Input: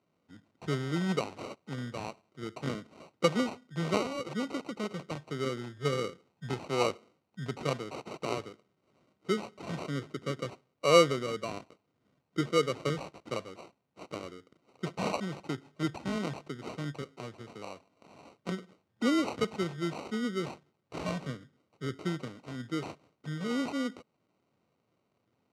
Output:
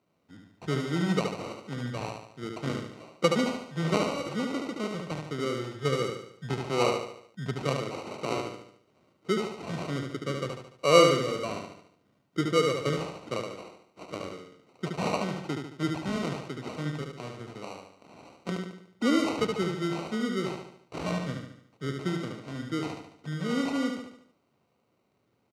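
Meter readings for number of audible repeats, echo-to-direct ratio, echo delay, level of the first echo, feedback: 5, -3.5 dB, 73 ms, -4.5 dB, 48%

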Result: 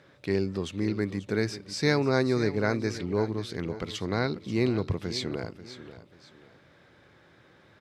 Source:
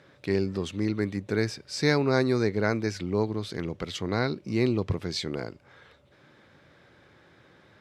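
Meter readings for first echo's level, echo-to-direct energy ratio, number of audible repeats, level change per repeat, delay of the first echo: -14.0 dB, -13.5 dB, 2, -9.5 dB, 539 ms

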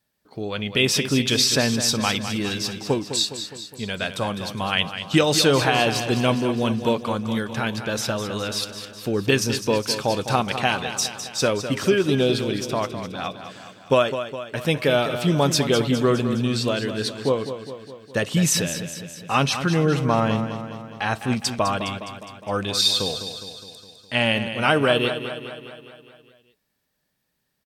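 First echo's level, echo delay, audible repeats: -10.0 dB, 206 ms, 6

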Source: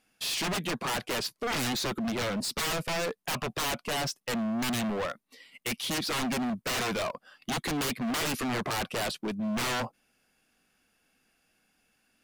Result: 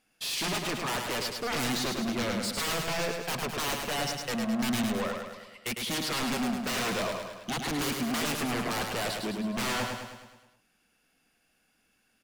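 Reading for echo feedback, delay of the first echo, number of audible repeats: 55%, 105 ms, 6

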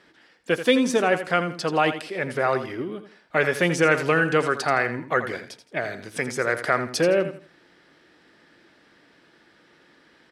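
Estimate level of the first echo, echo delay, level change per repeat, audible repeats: -11.0 dB, 83 ms, -11.0 dB, 3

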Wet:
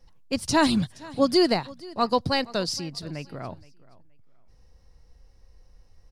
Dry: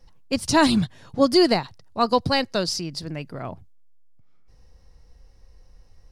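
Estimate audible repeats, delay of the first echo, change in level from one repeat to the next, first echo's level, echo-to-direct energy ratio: 2, 472 ms, -12.5 dB, -21.5 dB, -21.5 dB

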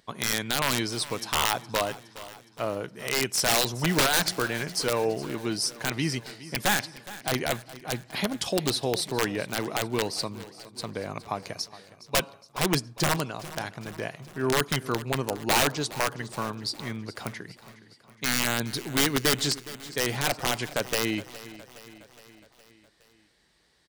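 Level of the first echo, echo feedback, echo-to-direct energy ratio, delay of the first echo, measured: -17.0 dB, 58%, -15.0 dB, 415 ms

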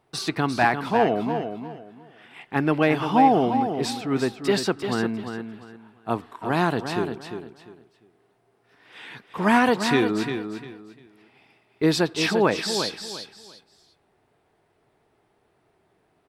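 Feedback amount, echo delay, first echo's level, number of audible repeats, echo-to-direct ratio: 25%, 348 ms, -8.0 dB, 3, -7.5 dB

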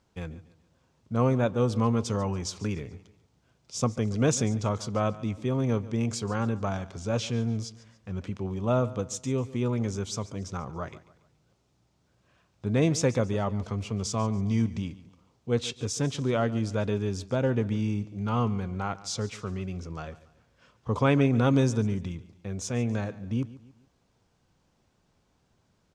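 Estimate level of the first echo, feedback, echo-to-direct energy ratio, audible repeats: -18.0 dB, 40%, -17.5 dB, 3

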